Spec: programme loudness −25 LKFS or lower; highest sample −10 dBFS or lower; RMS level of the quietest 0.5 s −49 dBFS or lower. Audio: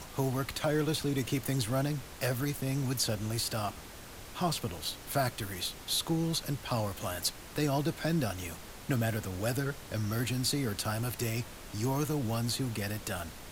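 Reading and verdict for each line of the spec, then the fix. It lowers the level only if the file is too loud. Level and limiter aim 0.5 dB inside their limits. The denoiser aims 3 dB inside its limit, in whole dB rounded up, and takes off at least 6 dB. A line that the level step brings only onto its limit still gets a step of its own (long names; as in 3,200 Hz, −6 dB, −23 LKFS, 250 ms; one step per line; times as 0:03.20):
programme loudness −33.0 LKFS: in spec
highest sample −17.5 dBFS: in spec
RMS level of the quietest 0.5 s −47 dBFS: out of spec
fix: broadband denoise 6 dB, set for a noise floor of −47 dBFS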